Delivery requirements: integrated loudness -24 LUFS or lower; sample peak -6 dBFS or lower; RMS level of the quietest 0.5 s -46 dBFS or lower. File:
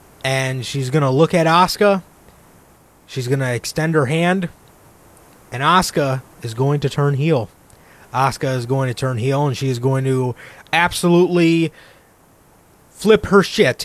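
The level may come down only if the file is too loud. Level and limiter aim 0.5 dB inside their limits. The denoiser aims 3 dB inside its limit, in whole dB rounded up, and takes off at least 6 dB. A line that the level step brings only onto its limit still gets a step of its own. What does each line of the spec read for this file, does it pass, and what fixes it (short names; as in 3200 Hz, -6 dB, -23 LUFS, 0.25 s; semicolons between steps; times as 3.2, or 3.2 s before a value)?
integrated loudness -17.5 LUFS: fail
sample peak -2.0 dBFS: fail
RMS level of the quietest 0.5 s -51 dBFS: OK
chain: gain -7 dB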